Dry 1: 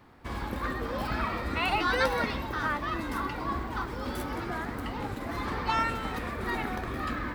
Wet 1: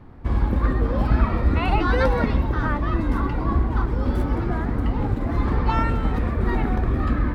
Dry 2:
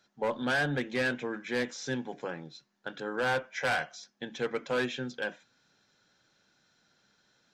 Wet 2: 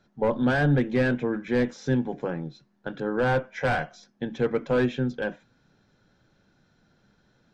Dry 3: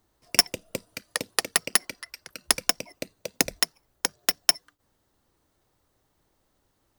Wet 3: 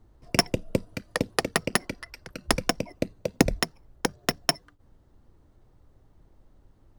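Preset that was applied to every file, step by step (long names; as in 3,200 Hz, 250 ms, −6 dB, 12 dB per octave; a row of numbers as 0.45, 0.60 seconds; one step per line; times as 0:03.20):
spectral tilt −3.5 dB per octave
level +3.5 dB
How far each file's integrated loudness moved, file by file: +8.5, +6.5, −3.0 LU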